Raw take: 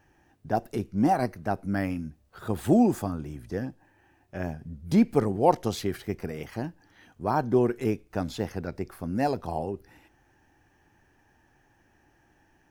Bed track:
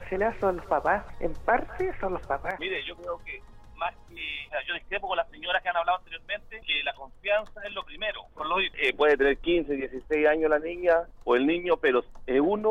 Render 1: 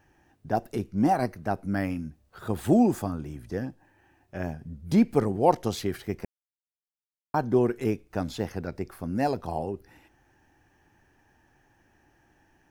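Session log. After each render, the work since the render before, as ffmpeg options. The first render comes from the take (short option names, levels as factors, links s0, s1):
-filter_complex "[0:a]asplit=3[s0][s1][s2];[s0]atrim=end=6.25,asetpts=PTS-STARTPTS,afade=t=out:st=6.246:d=0.004:c=hsin[s3];[s1]atrim=start=6.25:end=7.34,asetpts=PTS-STARTPTS,volume=0[s4];[s2]atrim=start=7.34,asetpts=PTS-STARTPTS,afade=t=in:d=0.004:c=hsin[s5];[s3][s4][s5]concat=n=3:v=0:a=1"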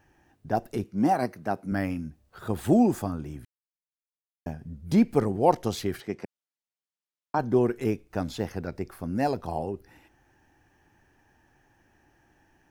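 -filter_complex "[0:a]asettb=1/sr,asplit=3[s0][s1][s2];[s0]atrim=end=0.844[s3];[s1]atrim=start=0.84:end=1.72,asetpts=PTS-STARTPTS,afade=t=in:d=0.004:c=qsin,afade=t=out:st=0.876:d=0.004:c=qsin,highpass=140[s4];[s2]atrim=start=1.716[s5];[s3][s4]acrossfade=d=0.004:c1=hsin:c2=qsin[s6];[s6][s5]acrossfade=d=0.004:c1=qsin:c2=hsin,asplit=3[s7][s8][s9];[s7]afade=t=out:st=6:d=0.02[s10];[s8]highpass=160,lowpass=7400,afade=t=in:st=6:d=0.02,afade=t=out:st=7.38:d=0.02[s11];[s9]afade=t=in:st=7.38:d=0.02[s12];[s10][s11][s12]amix=inputs=3:normalize=0,asplit=3[s13][s14][s15];[s13]atrim=end=3.45,asetpts=PTS-STARTPTS,afade=t=out:st=3.446:d=0.004:c=hsin[s16];[s14]atrim=start=3.45:end=4.46,asetpts=PTS-STARTPTS,volume=0[s17];[s15]atrim=start=4.46,asetpts=PTS-STARTPTS,afade=t=in:d=0.004:c=hsin[s18];[s16][s17][s18]concat=n=3:v=0:a=1"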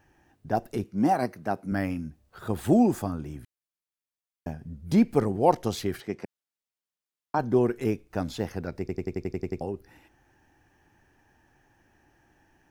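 -filter_complex "[0:a]asplit=10[s0][s1][s2][s3][s4][s5][s6][s7][s8][s9];[s0]atrim=end=8.892[s10];[s1]atrim=start=8.798:end=8.892[s11];[s2]atrim=start=8.798:end=8.892[s12];[s3]atrim=start=8.798:end=8.892[s13];[s4]atrim=start=8.798:end=8.892[s14];[s5]atrim=start=8.798:end=8.892[s15];[s6]atrim=start=8.798:end=8.892[s16];[s7]atrim=start=8.798:end=8.892[s17];[s8]atrim=start=8.798:end=8.892[s18];[s9]atrim=start=9.608[s19];[s10][s11]acrossfade=d=0.004:c1=hsin:c2=hsin[s20];[s20][s12]acrossfade=d=0.004:c1=hsin:c2=hsin[s21];[s21][s13]acrossfade=d=0.004:c1=hsin:c2=hsin[s22];[s22][s14]acrossfade=d=0.004:c1=hsin:c2=hsin[s23];[s23][s15]acrossfade=d=0.004:c1=hsin:c2=hsin[s24];[s24][s16]acrossfade=d=0.004:c1=hsin:c2=hsin[s25];[s25][s17]acrossfade=d=0.004:c1=hsin:c2=hsin[s26];[s26][s18]acrossfade=d=0.004:c1=hsin:c2=hsin[s27];[s27][s19]acrossfade=d=0.004:c1=hsin:c2=hsin"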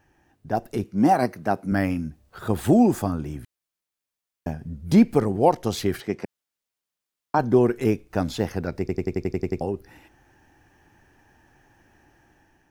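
-af "alimiter=limit=0.251:level=0:latency=1:release=353,dynaudnorm=f=300:g=5:m=1.88"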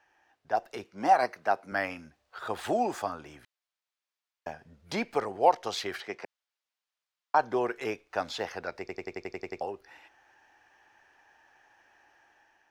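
-filter_complex "[0:a]acrossover=split=530 6200:gain=0.0708 1 0.178[s0][s1][s2];[s0][s1][s2]amix=inputs=3:normalize=0"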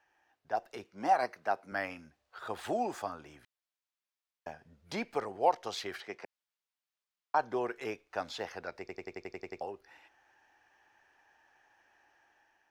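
-af "volume=0.562"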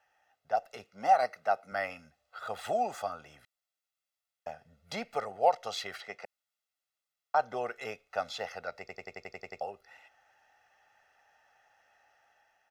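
-af "lowshelf=f=150:g=-7.5,aecho=1:1:1.5:0.73"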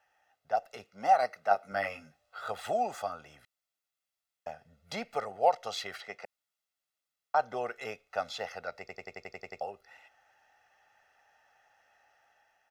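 -filter_complex "[0:a]asettb=1/sr,asplit=3[s0][s1][s2];[s0]atrim=end=1.494[s3];[s1]atrim=start=1.49:end=2.52,asetpts=PTS-STARTPTS,afade=t=in:d=0.004:c=qsin,afade=t=out:st=1.026:d=0.004:c=qsin,asplit=2[s4][s5];[s5]adelay=20,volume=0.75[s6];[s4][s6]amix=inputs=2:normalize=0,atrim=end_sample=45423[s7];[s2]atrim=start=2.516[s8];[s3][s7]acrossfade=d=0.004:c1=hsin:c2=qsin[s9];[s9][s8]acrossfade=d=0.004:c1=qsin:c2=hsin"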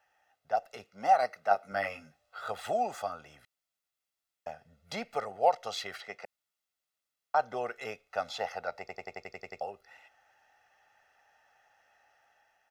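-filter_complex "[0:a]asettb=1/sr,asplit=3[s0][s1][s2];[s0]atrim=end=8.284[s3];[s1]atrim=start=8.28:end=9.23,asetpts=PTS-STARTPTS,afade=t=in:d=0.004:c=qsin,afade=t=out:st=0.946:d=0.004:c=qsin,equalizer=f=810:t=o:w=0.77:g=7[s4];[s2]atrim=start=9.226[s5];[s3][s4]acrossfade=d=0.004:c1=hsin:c2=qsin[s6];[s6][s5]acrossfade=d=0.004:c1=qsin:c2=hsin"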